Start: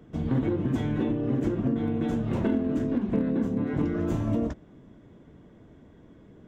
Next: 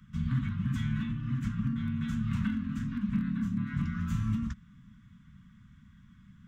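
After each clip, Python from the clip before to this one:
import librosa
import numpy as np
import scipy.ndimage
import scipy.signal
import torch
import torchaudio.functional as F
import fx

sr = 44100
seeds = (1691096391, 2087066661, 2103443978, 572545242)

y = scipy.signal.sosfilt(scipy.signal.ellip(3, 1.0, 40, [210.0, 1200.0], 'bandstop', fs=sr, output='sos'), x)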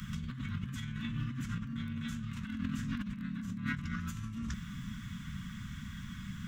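y = fx.high_shelf(x, sr, hz=2000.0, db=11.5)
y = fx.over_compress(y, sr, threshold_db=-41.0, ratio=-1.0)
y = F.gain(torch.from_numpy(y), 3.0).numpy()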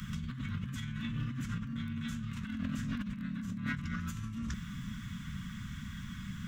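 y = 10.0 ** (-26.0 / 20.0) * np.tanh(x / 10.0 ** (-26.0 / 20.0))
y = F.gain(torch.from_numpy(y), 1.0).numpy()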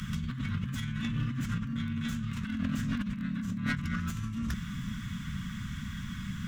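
y = fx.tracing_dist(x, sr, depth_ms=0.088)
y = F.gain(torch.from_numpy(y), 4.5).numpy()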